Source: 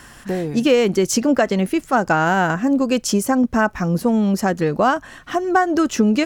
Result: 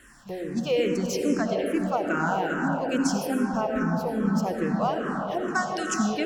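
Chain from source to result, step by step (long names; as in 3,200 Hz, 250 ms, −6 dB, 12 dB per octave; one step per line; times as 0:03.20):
0:05.48–0:05.94: meter weighting curve ITU-R 468
convolution reverb RT60 5.2 s, pre-delay 40 ms, DRR 0 dB
frequency shifter mixed with the dry sound −2.4 Hz
level −8.5 dB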